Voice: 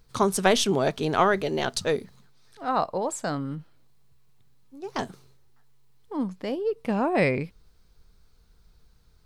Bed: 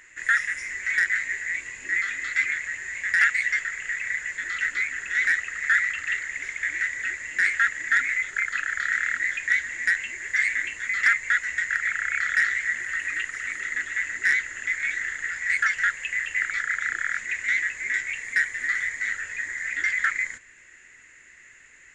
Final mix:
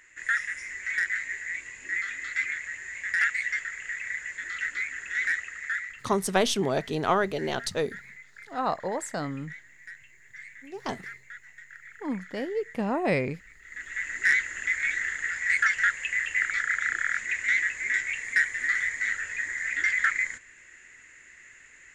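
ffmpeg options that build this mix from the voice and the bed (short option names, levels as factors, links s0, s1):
-filter_complex "[0:a]adelay=5900,volume=0.708[s0];[1:a]volume=6.68,afade=t=out:st=5.35:d=0.76:silence=0.141254,afade=t=in:st=13.63:d=0.67:silence=0.0841395[s1];[s0][s1]amix=inputs=2:normalize=0"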